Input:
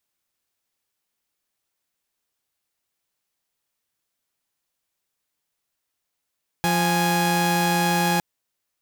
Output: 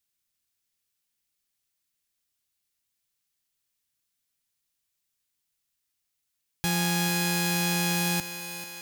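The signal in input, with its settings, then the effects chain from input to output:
chord F3/G#5 saw, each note -19 dBFS 1.56 s
peaking EQ 680 Hz -11.5 dB 2.7 oct; on a send: thinning echo 439 ms, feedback 67%, high-pass 270 Hz, level -10.5 dB

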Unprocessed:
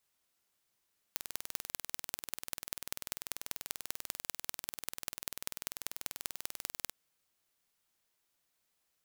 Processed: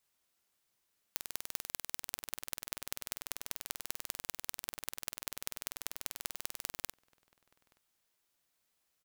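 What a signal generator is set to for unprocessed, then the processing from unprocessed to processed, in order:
pulse train 20.4 per s, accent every 4, -7 dBFS 5.74 s
echo from a far wall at 150 m, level -22 dB

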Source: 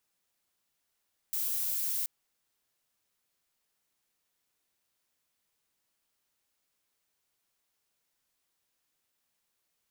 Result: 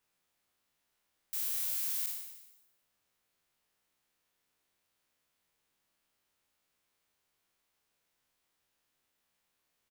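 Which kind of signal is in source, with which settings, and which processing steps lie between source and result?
noise violet, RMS -32 dBFS 0.73 s
spectral sustain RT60 0.94 s; tone controls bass 0 dB, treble -5 dB; frequency-shifting echo 150 ms, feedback 32%, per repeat -40 Hz, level -15 dB

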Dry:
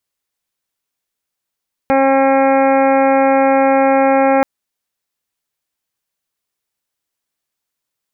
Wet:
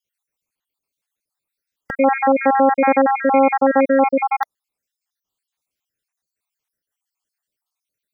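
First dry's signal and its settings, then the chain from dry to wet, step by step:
steady additive tone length 2.53 s, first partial 270 Hz, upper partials 3/1.5/-10.5/-8.5/-11/-14/-11.5/-14.5 dB, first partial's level -15.5 dB
random holes in the spectrogram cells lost 61%

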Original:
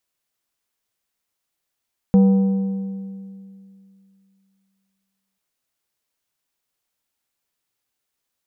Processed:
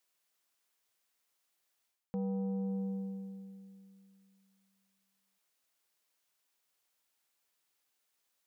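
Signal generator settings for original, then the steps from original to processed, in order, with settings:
metal hit plate, length 3.24 s, lowest mode 194 Hz, decay 2.62 s, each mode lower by 11.5 dB, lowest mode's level -8.5 dB
bass shelf 230 Hz -12 dB; reverse; compression 10:1, threshold -33 dBFS; reverse

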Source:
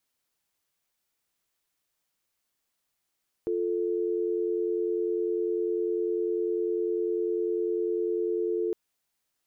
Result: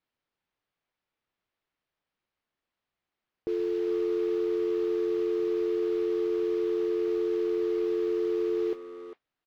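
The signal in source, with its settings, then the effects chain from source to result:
call progress tone dial tone, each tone -28 dBFS 5.26 s
modulation noise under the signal 14 dB; distance through air 280 m; speakerphone echo 400 ms, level -9 dB

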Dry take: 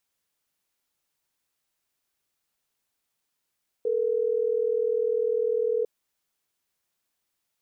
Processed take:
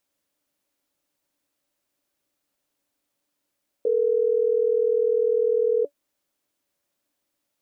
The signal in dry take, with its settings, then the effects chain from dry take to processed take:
call progress tone ringback tone, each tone -25 dBFS
peaking EQ 370 Hz +3.5 dB 2.8 oct; small resonant body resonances 290/570 Hz, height 12 dB, ringing for 85 ms

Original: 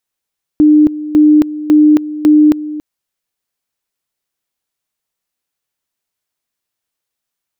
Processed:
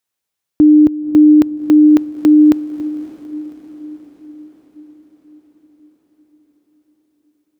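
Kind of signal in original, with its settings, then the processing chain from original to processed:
two-level tone 302 Hz -3.5 dBFS, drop 15.5 dB, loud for 0.27 s, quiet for 0.28 s, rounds 4
high-pass 51 Hz; echo that smears into a reverb 576 ms, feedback 59%, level -15 dB

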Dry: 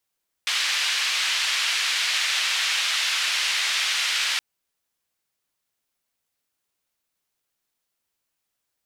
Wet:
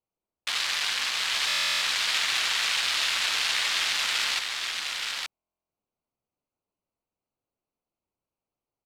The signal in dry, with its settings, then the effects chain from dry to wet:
noise band 2.2–3.3 kHz, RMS -24 dBFS 3.92 s
local Wiener filter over 25 samples; delay 871 ms -3.5 dB; buffer glitch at 1.47/5.34 s, samples 1024, times 14

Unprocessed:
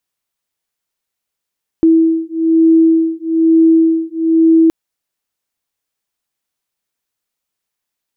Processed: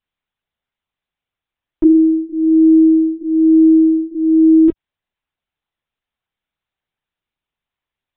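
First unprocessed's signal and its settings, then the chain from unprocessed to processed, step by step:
beating tones 325 Hz, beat 1.1 Hz, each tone -11 dBFS 2.87 s
high-pass 73 Hz 24 dB/octave; LPC vocoder at 8 kHz pitch kept

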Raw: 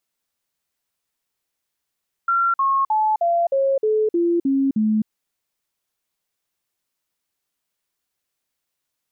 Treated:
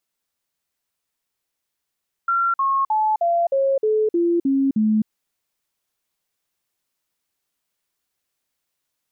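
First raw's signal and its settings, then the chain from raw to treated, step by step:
stepped sine 1.37 kHz down, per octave 3, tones 9, 0.26 s, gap 0.05 s -15.5 dBFS
gain riding

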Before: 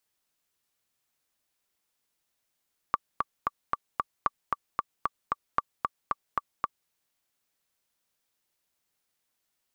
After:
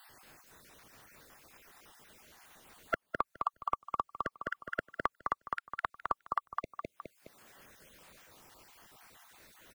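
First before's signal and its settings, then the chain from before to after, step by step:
metronome 227 bpm, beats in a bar 5, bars 3, 1.16 kHz, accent 3 dB -10 dBFS
random holes in the spectrogram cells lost 45%; on a send: feedback delay 208 ms, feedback 24%, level -6 dB; on the sum: three bands compressed up and down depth 100%

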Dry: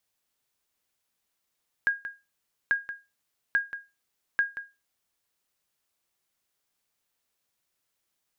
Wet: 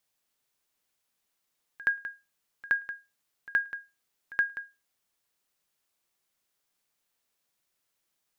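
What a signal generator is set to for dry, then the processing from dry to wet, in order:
sonar ping 1.63 kHz, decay 0.25 s, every 0.84 s, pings 4, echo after 0.18 s, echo -12 dB -16 dBFS
peaking EQ 71 Hz -6 dB 0.71 oct; pre-echo 72 ms -20 dB

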